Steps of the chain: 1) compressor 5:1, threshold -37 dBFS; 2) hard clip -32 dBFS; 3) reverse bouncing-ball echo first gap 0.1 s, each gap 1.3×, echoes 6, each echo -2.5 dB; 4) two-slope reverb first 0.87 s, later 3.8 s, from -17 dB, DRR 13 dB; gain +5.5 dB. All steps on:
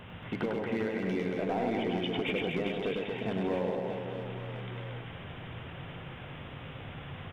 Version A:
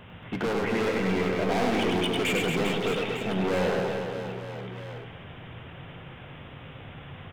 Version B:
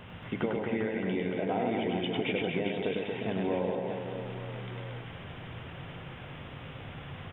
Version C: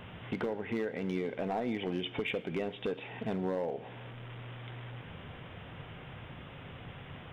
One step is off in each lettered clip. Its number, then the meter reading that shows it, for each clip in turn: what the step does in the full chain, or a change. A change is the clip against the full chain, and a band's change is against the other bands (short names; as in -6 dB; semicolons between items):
1, mean gain reduction 6.0 dB; 2, distortion -15 dB; 3, loudness change -3.5 LU